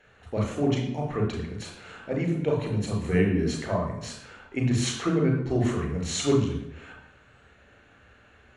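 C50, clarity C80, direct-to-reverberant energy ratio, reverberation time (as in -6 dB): 4.0 dB, 7.5 dB, 0.0 dB, 0.85 s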